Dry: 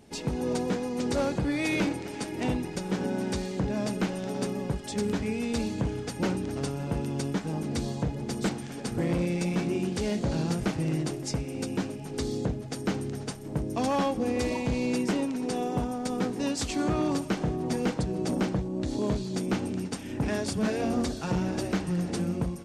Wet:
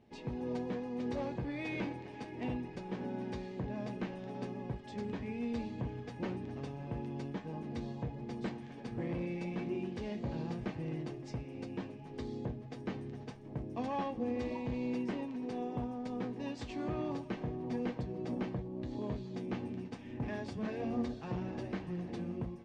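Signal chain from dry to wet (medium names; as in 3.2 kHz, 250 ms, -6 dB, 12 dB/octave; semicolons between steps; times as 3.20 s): low-pass 3 kHz 12 dB/octave; band-stop 1.4 kHz, Q 7.1; feedback comb 120 Hz, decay 0.15 s, harmonics all, mix 70%; trim -4.5 dB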